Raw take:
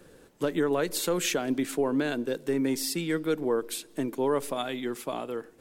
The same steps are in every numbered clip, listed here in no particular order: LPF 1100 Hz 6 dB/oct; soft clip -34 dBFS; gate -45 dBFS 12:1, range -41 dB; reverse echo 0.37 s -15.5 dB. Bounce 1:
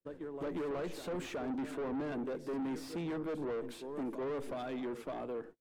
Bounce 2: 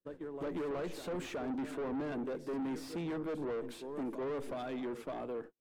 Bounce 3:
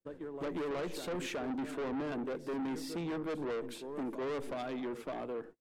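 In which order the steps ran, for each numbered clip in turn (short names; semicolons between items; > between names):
reverse echo > gate > soft clip > LPF; reverse echo > soft clip > gate > LPF; reverse echo > gate > LPF > soft clip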